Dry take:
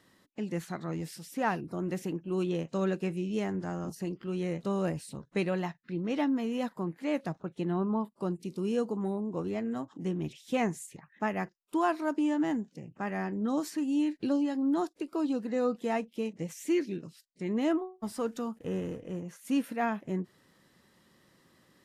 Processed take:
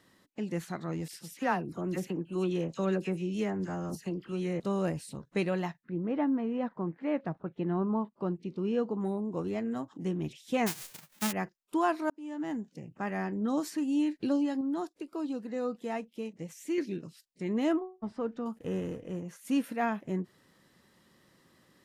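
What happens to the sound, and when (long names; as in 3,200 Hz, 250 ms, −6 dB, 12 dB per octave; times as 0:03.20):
0:01.08–0:04.60: all-pass dispersion lows, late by 50 ms, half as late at 1,700 Hz
0:05.83–0:08.98: low-pass filter 1,400 Hz → 3,400 Hz
0:10.66–0:11.31: spectral envelope flattened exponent 0.1
0:12.10–0:12.79: fade in
0:14.61–0:16.78: clip gain −4.5 dB
0:17.79–0:18.46: head-to-tape spacing loss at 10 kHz 30 dB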